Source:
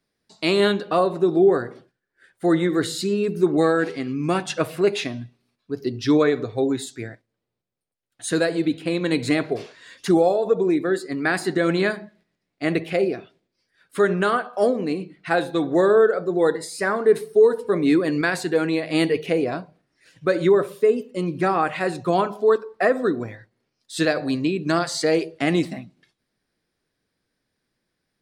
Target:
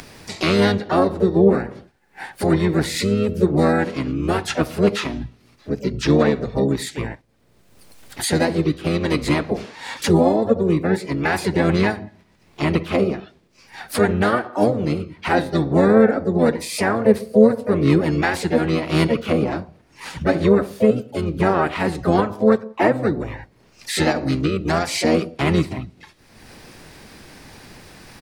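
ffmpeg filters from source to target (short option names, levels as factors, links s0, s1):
-filter_complex "[0:a]acompressor=mode=upward:threshold=0.112:ratio=2.5,asplit=4[s0][s1][s2][s3];[s1]asetrate=22050,aresample=44100,atempo=2,volume=0.891[s4];[s2]asetrate=52444,aresample=44100,atempo=0.840896,volume=0.501[s5];[s3]asetrate=66075,aresample=44100,atempo=0.66742,volume=0.224[s6];[s0][s4][s5][s6]amix=inputs=4:normalize=0,volume=0.891"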